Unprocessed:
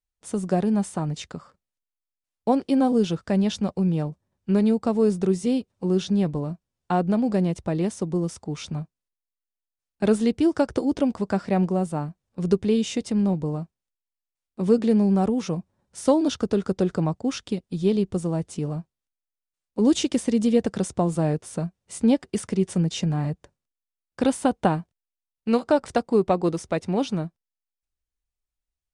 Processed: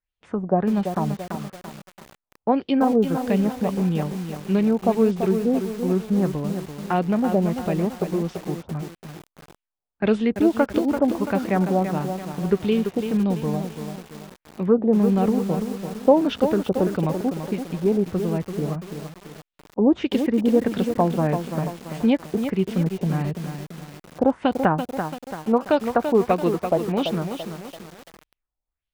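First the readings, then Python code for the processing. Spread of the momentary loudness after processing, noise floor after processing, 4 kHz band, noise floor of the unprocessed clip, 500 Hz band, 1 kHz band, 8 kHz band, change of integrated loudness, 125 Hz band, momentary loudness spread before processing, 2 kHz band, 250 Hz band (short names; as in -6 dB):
13 LU, under -85 dBFS, -1.0 dB, under -85 dBFS, +2.5 dB, +4.0 dB, n/a, +1.5 dB, +1.0 dB, 11 LU, +4.5 dB, +1.0 dB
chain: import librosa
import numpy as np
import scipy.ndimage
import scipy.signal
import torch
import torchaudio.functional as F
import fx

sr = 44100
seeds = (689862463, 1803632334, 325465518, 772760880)

y = fx.filter_lfo_lowpass(x, sr, shape='sine', hz=1.6, low_hz=730.0, high_hz=3400.0, q=2.4)
y = fx.echo_crushed(y, sr, ms=337, feedback_pct=55, bits=6, wet_db=-7)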